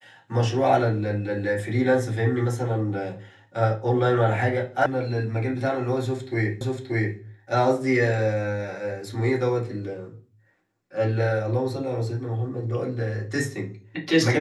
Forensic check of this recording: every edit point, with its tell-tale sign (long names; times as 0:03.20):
0:04.86: cut off before it has died away
0:06.61: the same again, the last 0.58 s